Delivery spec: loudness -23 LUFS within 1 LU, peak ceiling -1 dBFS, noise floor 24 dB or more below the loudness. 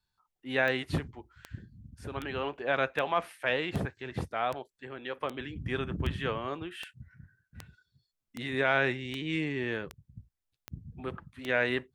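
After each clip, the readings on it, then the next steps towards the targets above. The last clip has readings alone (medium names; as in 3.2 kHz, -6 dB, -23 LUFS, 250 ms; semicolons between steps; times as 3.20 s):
clicks found 15; loudness -32.5 LUFS; peak level -13.5 dBFS; loudness target -23.0 LUFS
-> de-click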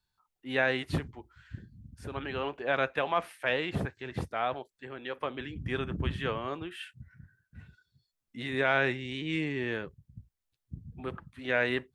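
clicks found 0; loudness -32.5 LUFS; peak level -13.5 dBFS; loudness target -23.0 LUFS
-> trim +9.5 dB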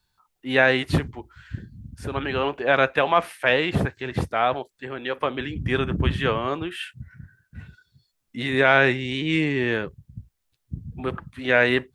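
loudness -23.0 LUFS; peak level -4.0 dBFS; noise floor -75 dBFS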